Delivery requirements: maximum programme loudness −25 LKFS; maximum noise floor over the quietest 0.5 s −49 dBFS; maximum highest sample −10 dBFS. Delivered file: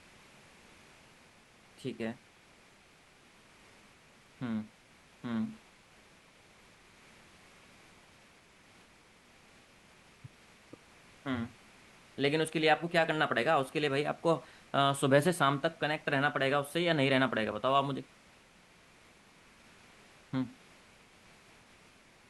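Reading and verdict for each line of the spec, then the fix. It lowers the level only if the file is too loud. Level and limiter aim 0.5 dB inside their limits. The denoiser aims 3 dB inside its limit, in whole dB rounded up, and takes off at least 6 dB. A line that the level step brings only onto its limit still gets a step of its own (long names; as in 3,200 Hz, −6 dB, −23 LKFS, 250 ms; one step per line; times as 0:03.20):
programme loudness −31.5 LKFS: in spec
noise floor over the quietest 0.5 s −61 dBFS: in spec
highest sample −12.5 dBFS: in spec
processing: no processing needed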